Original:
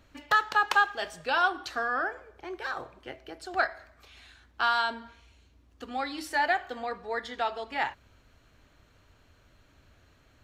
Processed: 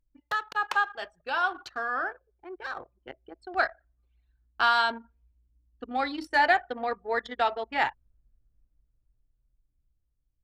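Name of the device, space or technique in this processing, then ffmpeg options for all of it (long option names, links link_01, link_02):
voice memo with heavy noise removal: -filter_complex "[0:a]asettb=1/sr,asplit=3[link_01][link_02][link_03];[link_01]atrim=end=0.534[link_04];[link_02]atrim=start=0.53:end=2.19,asetpts=PTS-STARTPTS,afade=type=in:duration=0.004:curve=qsin,afade=type=out:start_time=1.656:duration=0.004:curve=qsin,adynamicequalizer=threshold=0.02:dfrequency=1200:dqfactor=0.81:tfrequency=1200:tqfactor=0.81:attack=5:release=100:ratio=0.375:range=2:mode=boostabove:tftype=bell[link_05];[link_03]atrim=start=2.186[link_06];[link_04][link_05]acrossfade=duration=0.004:curve1=hsin:curve2=qsin[link_07];[link_07][link_06]acrossfade=duration=0.004:curve1=qsin:curve2=hsin,anlmdn=1.58,dynaudnorm=framelen=570:gausssize=9:maxgain=11.5dB,volume=-6dB"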